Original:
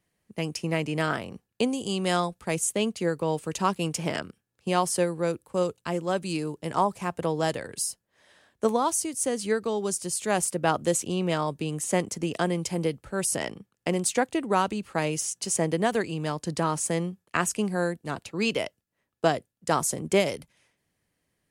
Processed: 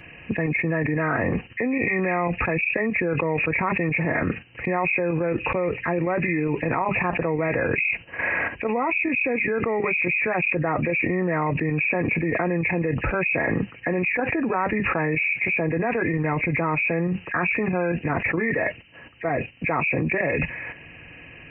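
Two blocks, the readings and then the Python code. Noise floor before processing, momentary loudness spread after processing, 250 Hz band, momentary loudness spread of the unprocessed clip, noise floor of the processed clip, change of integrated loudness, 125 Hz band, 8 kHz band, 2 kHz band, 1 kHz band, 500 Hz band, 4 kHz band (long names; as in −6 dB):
−80 dBFS, 5 LU, +4.0 dB, 6 LU, −45 dBFS, +4.0 dB, +5.5 dB, below −40 dB, +12.0 dB, +1.5 dB, +2.5 dB, below −10 dB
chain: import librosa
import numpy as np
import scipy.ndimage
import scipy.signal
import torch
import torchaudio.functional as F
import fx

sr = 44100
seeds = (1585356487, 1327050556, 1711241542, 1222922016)

y = fx.freq_compress(x, sr, knee_hz=1600.0, ratio=4.0)
y = fx.level_steps(y, sr, step_db=10)
y = fx.notch_comb(y, sr, f0_hz=200.0)
y = fx.env_flatten(y, sr, amount_pct=100)
y = y * librosa.db_to_amplitude(-3.0)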